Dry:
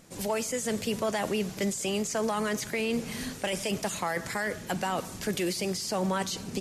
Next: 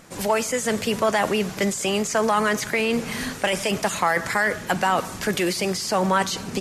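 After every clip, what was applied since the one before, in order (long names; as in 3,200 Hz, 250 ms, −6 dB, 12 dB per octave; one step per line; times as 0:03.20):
parametric band 1,300 Hz +7 dB 2 octaves
level +5 dB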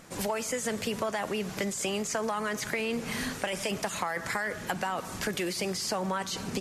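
downward compressor, threshold −25 dBFS, peak gain reduction 9.5 dB
level −3 dB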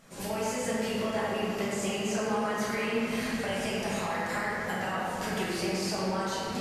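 convolution reverb RT60 3.5 s, pre-delay 5 ms, DRR −9 dB
level −9 dB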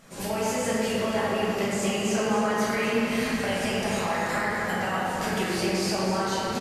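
single-tap delay 251 ms −8 dB
level +4 dB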